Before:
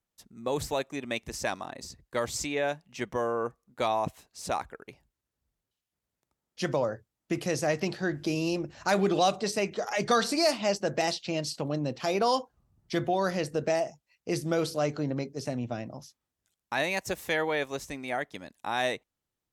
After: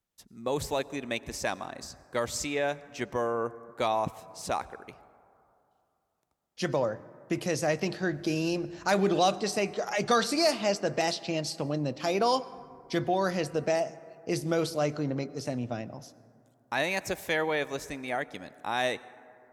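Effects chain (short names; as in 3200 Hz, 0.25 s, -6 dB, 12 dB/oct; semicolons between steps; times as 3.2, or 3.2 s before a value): plate-style reverb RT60 2.7 s, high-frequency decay 0.3×, pre-delay 80 ms, DRR 18.5 dB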